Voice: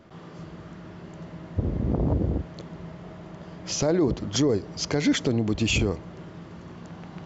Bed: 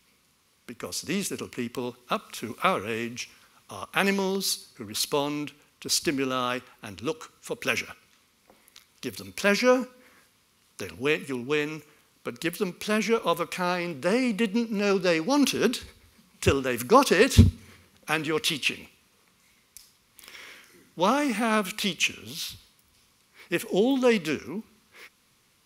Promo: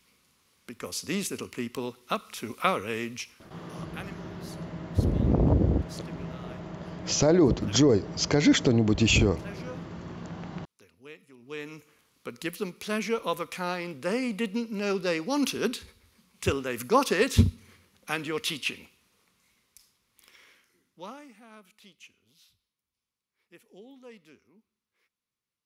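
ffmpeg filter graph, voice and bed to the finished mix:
-filter_complex "[0:a]adelay=3400,volume=2dB[a];[1:a]volume=16dB,afade=t=out:st=3.16:d=0.91:silence=0.0944061,afade=t=in:st=11.37:d=0.58:silence=0.133352,afade=t=out:st=19.02:d=2.33:silence=0.0749894[b];[a][b]amix=inputs=2:normalize=0"

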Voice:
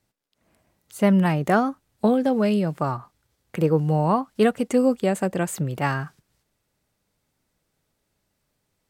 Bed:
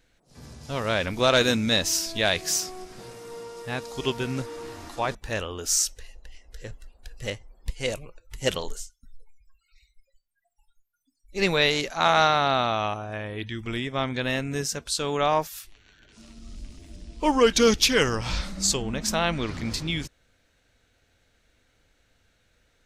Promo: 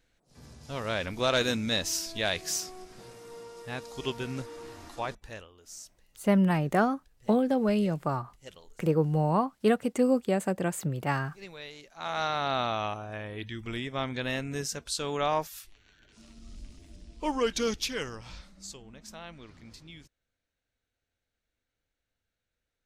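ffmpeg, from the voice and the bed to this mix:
-filter_complex "[0:a]adelay=5250,volume=-5dB[a];[1:a]volume=11.5dB,afade=t=out:st=4.99:d=0.52:silence=0.149624,afade=t=in:st=11.9:d=0.73:silence=0.133352,afade=t=out:st=16.59:d=1.91:silence=0.177828[b];[a][b]amix=inputs=2:normalize=0"

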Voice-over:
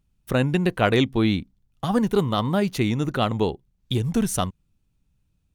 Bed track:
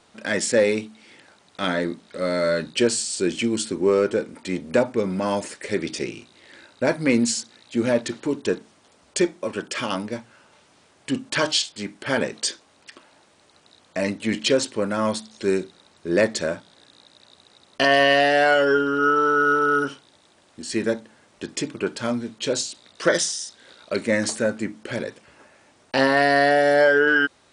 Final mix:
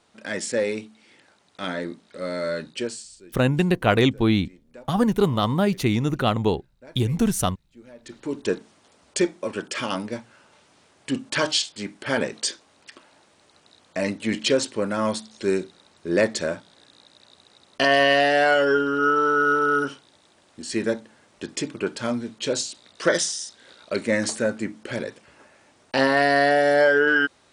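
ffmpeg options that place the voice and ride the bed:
-filter_complex "[0:a]adelay=3050,volume=1dB[a];[1:a]volume=19dB,afade=t=out:st=2.6:d=0.61:silence=0.1,afade=t=in:st=7.98:d=0.5:silence=0.0595662[b];[a][b]amix=inputs=2:normalize=0"

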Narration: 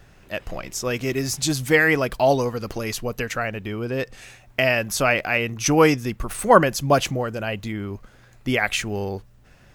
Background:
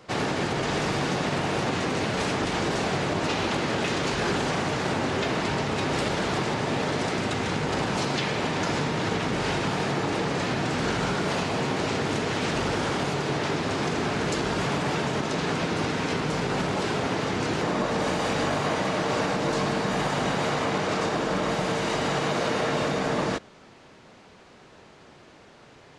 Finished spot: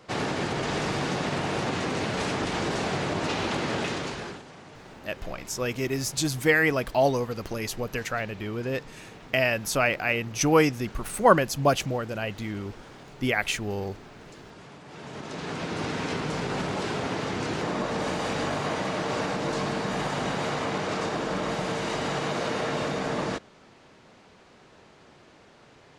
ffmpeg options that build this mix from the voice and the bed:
-filter_complex "[0:a]adelay=4750,volume=-4dB[a];[1:a]volume=15.5dB,afade=t=out:st=3.78:d=0.65:silence=0.11885,afade=t=in:st=14.87:d=1.08:silence=0.133352[b];[a][b]amix=inputs=2:normalize=0"

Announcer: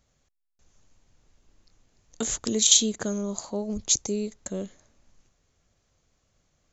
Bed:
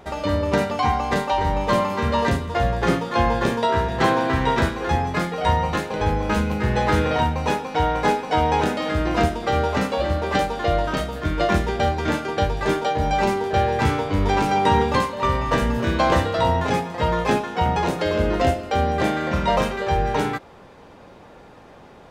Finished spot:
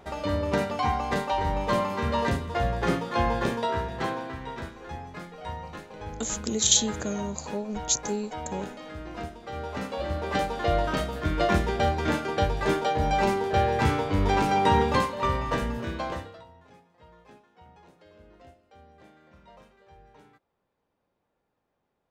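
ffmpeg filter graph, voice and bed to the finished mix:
-filter_complex "[0:a]adelay=4000,volume=-2.5dB[a];[1:a]volume=8dB,afade=t=out:st=3.43:d=0.95:silence=0.266073,afade=t=in:st=9.47:d=1.31:silence=0.211349,afade=t=out:st=15.05:d=1.4:silence=0.0334965[b];[a][b]amix=inputs=2:normalize=0"

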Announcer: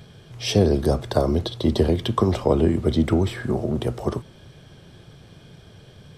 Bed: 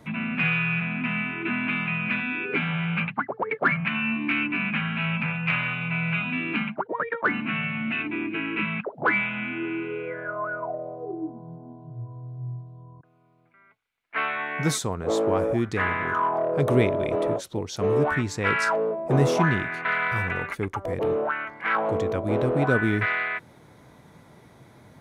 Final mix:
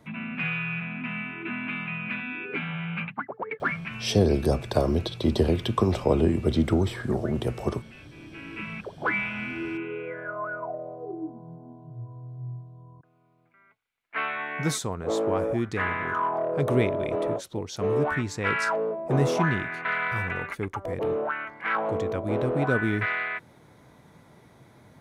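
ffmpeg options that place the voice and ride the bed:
-filter_complex "[0:a]adelay=3600,volume=-3dB[a];[1:a]volume=14dB,afade=t=out:st=3.68:d=0.48:silence=0.149624,afade=t=in:st=8.13:d=1.2:silence=0.105925[b];[a][b]amix=inputs=2:normalize=0"

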